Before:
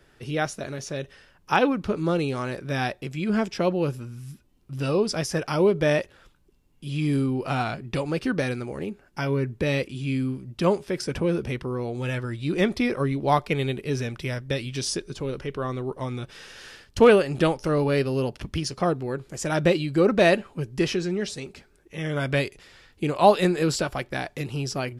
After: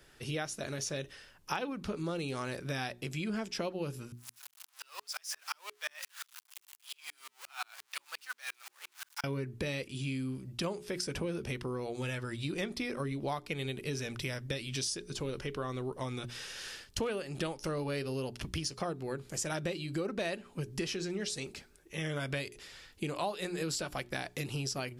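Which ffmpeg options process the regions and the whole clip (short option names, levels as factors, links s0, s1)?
-filter_complex "[0:a]asettb=1/sr,asplit=3[s0][s1][s2];[s0]atrim=end=4.124[s3];[s1]atrim=start=4.12:end=9.24,asetpts=PTS-STARTPTS,afade=t=in:d=0.004:c=qsin,afade=t=out:st=5.116:d=0.004:c=qsin,aeval=exprs='val(0)+0.5*0.0266*sgn(val(0))':c=same,highpass=f=1000:w=0.5412,highpass=f=1000:w=1.3066,aeval=exprs='val(0)*pow(10,-40*if(lt(mod(-5.7*n/s,1),2*abs(-5.7)/1000),1-mod(-5.7*n/s,1)/(2*abs(-5.7)/1000),(mod(-5.7*n/s,1)-2*abs(-5.7)/1000)/(1-2*abs(-5.7)/1000))/20)':c=same[s4];[s2]atrim=start=9.236[s5];[s3][s4]acrossfade=d=0.004:c1=hsin:c2=qsin[s6];[s6][s5]acrossfade=d=0.004:c1=qsin:c2=hsin,highshelf=f=3000:g=9,bandreject=f=60:t=h:w=6,bandreject=f=120:t=h:w=6,bandreject=f=180:t=h:w=6,bandreject=f=240:t=h:w=6,bandreject=f=300:t=h:w=6,bandreject=f=360:t=h:w=6,bandreject=f=420:t=h:w=6,acompressor=threshold=0.0355:ratio=6,volume=0.631"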